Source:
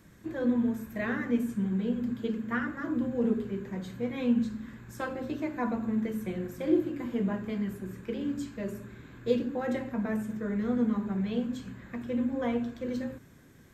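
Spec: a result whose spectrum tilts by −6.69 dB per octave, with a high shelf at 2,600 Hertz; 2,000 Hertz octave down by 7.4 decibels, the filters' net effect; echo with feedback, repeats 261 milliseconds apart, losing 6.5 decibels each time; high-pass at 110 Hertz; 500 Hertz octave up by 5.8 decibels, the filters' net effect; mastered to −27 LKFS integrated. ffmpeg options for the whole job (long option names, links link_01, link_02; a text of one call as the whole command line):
ffmpeg -i in.wav -af "highpass=110,equalizer=frequency=500:width_type=o:gain=7,equalizer=frequency=2000:width_type=o:gain=-8.5,highshelf=frequency=2600:gain=-5,aecho=1:1:261|522|783|1044|1305|1566:0.473|0.222|0.105|0.0491|0.0231|0.0109,volume=1.5dB" out.wav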